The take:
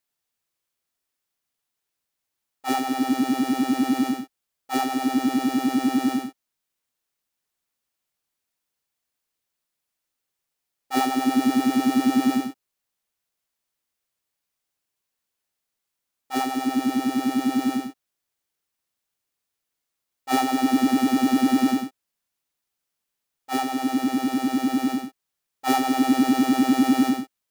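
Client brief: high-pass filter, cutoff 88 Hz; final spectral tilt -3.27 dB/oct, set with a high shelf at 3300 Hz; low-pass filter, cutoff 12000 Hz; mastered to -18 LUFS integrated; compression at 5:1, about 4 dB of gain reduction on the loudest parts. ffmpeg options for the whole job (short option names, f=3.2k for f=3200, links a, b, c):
-af "highpass=88,lowpass=12k,highshelf=f=3.3k:g=4,acompressor=threshold=-19dB:ratio=5,volume=7dB"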